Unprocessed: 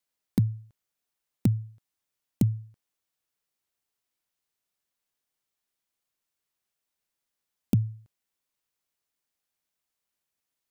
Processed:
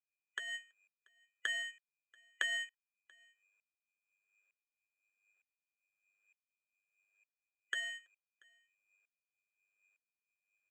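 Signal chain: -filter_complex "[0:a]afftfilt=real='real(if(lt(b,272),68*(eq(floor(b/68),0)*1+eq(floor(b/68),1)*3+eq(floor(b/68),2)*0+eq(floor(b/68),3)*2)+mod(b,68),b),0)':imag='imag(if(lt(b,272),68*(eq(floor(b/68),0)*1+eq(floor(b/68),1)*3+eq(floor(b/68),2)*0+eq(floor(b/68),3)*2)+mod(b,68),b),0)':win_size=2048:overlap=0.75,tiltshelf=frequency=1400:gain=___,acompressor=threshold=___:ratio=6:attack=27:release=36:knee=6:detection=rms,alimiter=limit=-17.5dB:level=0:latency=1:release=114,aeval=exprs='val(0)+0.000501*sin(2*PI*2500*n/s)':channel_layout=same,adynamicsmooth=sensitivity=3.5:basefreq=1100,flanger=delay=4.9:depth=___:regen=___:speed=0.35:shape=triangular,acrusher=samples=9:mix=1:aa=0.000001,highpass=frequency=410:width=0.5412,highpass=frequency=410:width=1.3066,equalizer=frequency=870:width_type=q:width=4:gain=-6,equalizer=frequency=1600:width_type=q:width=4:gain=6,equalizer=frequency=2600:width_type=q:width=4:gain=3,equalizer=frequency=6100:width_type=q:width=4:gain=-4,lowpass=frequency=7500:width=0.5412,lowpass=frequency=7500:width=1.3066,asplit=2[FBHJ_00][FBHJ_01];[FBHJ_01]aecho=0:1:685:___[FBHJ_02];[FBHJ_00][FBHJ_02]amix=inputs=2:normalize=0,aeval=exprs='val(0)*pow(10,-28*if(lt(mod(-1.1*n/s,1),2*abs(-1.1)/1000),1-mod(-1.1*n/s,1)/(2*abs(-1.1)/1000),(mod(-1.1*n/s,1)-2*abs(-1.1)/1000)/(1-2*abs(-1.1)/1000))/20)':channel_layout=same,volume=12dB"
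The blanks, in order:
-6.5, -31dB, 2.5, 45, 0.075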